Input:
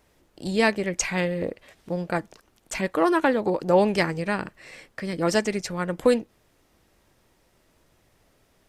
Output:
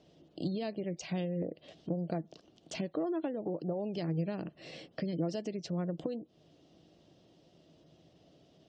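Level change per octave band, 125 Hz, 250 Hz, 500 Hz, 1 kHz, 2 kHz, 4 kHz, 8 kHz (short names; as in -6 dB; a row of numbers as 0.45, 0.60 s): -5.0, -9.0, -13.5, -19.0, -23.0, -13.5, -19.5 dB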